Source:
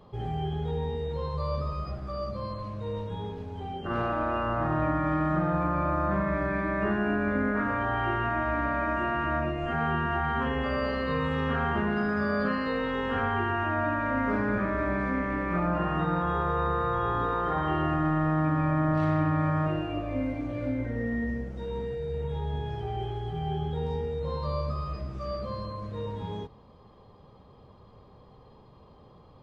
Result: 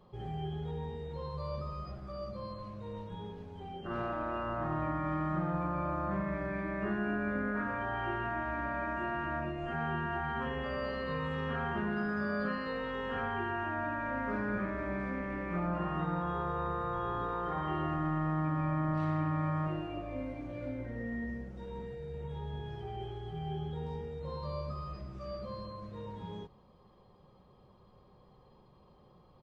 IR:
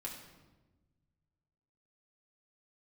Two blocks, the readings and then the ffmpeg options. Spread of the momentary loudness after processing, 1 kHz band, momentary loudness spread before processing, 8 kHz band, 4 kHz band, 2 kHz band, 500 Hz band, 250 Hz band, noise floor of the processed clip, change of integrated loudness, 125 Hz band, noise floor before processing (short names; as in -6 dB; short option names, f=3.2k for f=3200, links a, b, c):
10 LU, -7.0 dB, 9 LU, n/a, -7.0 dB, -6.5 dB, -7.5 dB, -7.0 dB, -61 dBFS, -7.0 dB, -7.0 dB, -54 dBFS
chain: -af "aecho=1:1:5.5:0.32,volume=-7.5dB"